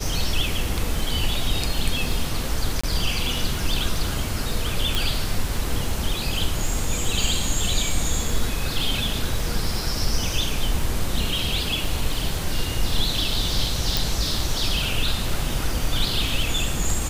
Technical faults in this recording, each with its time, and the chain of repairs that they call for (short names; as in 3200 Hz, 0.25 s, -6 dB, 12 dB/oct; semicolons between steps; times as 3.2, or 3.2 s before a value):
crackle 26/s -27 dBFS
2.81–2.83 gap 25 ms
4.95 pop
13.97 pop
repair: de-click; interpolate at 2.81, 25 ms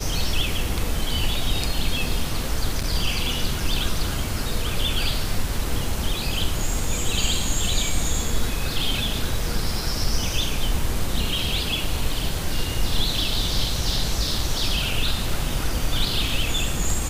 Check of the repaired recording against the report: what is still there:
4.95 pop
13.97 pop